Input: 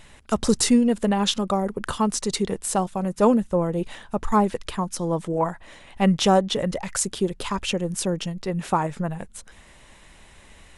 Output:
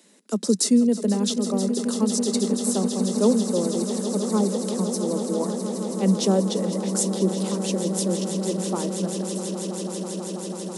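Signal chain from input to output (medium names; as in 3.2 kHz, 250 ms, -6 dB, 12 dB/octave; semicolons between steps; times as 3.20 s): steep high-pass 180 Hz 96 dB/octave; high-order bell 1.5 kHz -12 dB 2.6 oct; on a send: echo with a slow build-up 163 ms, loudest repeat 8, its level -13 dB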